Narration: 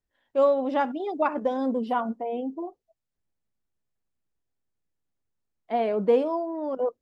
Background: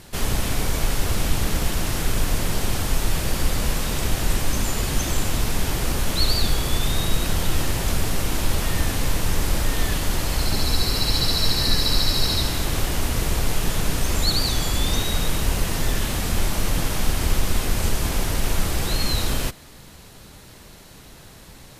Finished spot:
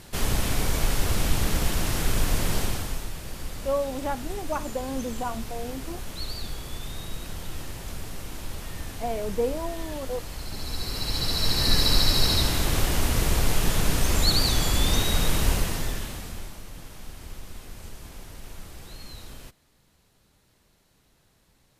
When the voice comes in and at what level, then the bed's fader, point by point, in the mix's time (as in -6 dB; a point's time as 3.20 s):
3.30 s, -5.5 dB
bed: 2.59 s -2 dB
3.13 s -13.5 dB
10.46 s -13.5 dB
11.79 s -0.5 dB
15.50 s -0.5 dB
16.65 s -19.5 dB